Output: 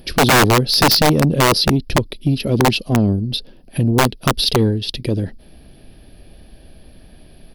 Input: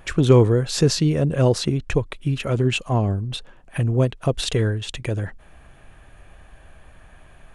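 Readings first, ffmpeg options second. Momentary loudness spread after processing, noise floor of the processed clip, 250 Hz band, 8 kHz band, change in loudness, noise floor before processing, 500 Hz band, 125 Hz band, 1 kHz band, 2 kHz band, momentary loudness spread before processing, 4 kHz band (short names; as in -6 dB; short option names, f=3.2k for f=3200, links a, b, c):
10 LU, -45 dBFS, +5.5 dB, +8.0 dB, +5.0 dB, -49 dBFS, +2.0 dB, +1.5 dB, +14.0 dB, +11.5 dB, 12 LU, +11.5 dB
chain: -af "firequalizer=gain_entry='entry(120,0);entry(220,9);entry(1100,-14);entry(4900,14);entry(7100,-21);entry(11000,13)':delay=0.05:min_phase=1,aeval=exprs='(mod(2.37*val(0)+1,2)-1)/2.37':c=same,acontrast=80,volume=-3dB" -ar 44100 -c:a libmp3lame -b:a 128k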